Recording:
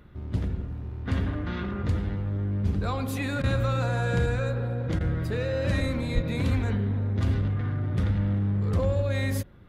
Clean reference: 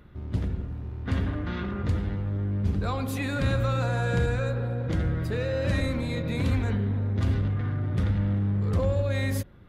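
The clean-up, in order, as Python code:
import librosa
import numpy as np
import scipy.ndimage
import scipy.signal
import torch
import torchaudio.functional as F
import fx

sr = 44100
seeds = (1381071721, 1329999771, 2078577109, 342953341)

y = fx.highpass(x, sr, hz=140.0, slope=24, at=(6.14, 6.26), fade=0.02)
y = fx.fix_interpolate(y, sr, at_s=(3.42, 4.99), length_ms=15.0)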